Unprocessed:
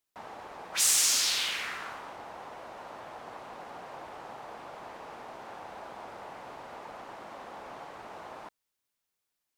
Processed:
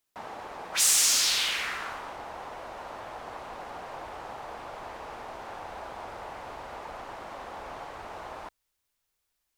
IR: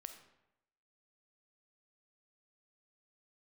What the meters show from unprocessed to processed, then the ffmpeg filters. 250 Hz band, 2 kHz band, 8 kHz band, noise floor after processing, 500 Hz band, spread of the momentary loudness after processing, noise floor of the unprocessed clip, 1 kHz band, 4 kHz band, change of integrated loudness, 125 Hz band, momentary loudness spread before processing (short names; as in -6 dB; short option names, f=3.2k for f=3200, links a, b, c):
+2.0 dB, +3.0 dB, +2.5 dB, -80 dBFS, +3.5 dB, 20 LU, -85 dBFS, +3.5 dB, +2.5 dB, +2.0 dB, +5.0 dB, 21 LU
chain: -filter_complex "[0:a]asubboost=boost=4.5:cutoff=78,asplit=2[a][b];[b]asoftclip=type=tanh:threshold=-27dB,volume=-4.5dB[c];[a][c]amix=inputs=2:normalize=0"